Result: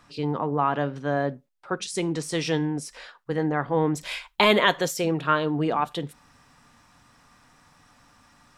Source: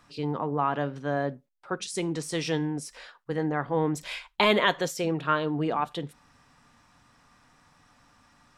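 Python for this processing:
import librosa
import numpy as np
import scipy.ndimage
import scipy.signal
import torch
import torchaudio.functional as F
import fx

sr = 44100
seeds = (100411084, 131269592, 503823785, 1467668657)

y = fx.high_shelf(x, sr, hz=10000.0, db=fx.steps((0.0, -2.5), (4.03, 6.5)))
y = y * librosa.db_to_amplitude(3.0)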